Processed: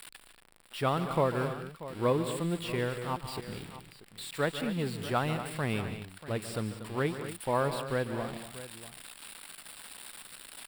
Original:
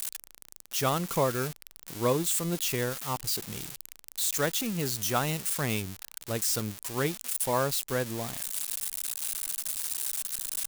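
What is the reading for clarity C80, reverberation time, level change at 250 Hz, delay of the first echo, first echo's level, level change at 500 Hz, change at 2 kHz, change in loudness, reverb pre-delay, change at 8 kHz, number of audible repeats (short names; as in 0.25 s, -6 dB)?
none, none, -0.5 dB, 0.145 s, -12.5 dB, -0.5 dB, -1.5 dB, -3.5 dB, none, -15.5 dB, 4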